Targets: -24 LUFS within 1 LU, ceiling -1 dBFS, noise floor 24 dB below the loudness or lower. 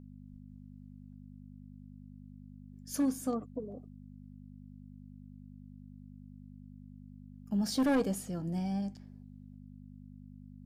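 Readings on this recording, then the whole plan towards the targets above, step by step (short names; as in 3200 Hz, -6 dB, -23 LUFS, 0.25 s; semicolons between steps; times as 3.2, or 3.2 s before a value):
clipped 0.5%; flat tops at -23.5 dBFS; hum 50 Hz; harmonics up to 250 Hz; hum level -49 dBFS; loudness -33.5 LUFS; peak -23.5 dBFS; loudness target -24.0 LUFS
-> clip repair -23.5 dBFS; de-hum 50 Hz, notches 5; gain +9.5 dB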